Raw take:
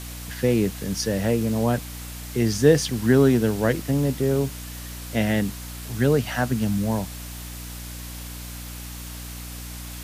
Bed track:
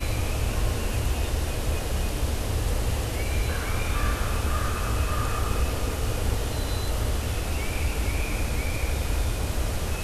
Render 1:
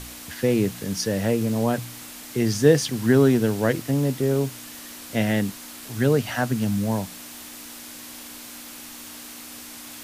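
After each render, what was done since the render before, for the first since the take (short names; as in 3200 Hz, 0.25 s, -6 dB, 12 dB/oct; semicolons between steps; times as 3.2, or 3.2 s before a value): de-hum 60 Hz, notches 3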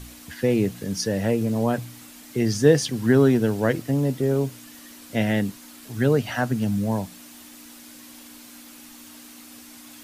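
denoiser 7 dB, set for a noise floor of -40 dBFS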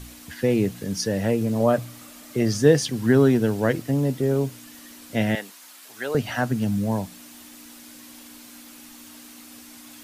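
1.6–2.61 small resonant body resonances 600/1200 Hz, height 9 dB, ringing for 25 ms; 5.35–6.15 HPF 670 Hz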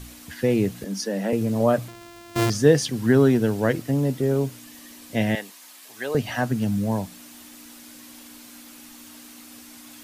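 0.84–1.33 rippled Chebyshev high-pass 190 Hz, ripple 3 dB; 1.88–2.5 sample sorter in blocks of 128 samples; 4.59–6.45 notch 1400 Hz, Q 8.8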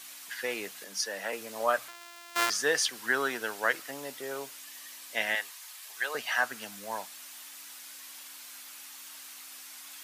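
HPF 1000 Hz 12 dB/oct; dynamic EQ 1400 Hz, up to +5 dB, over -44 dBFS, Q 1.6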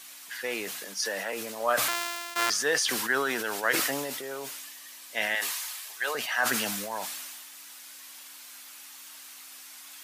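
sustainer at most 27 dB/s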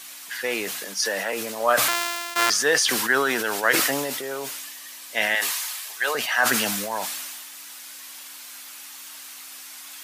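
gain +6 dB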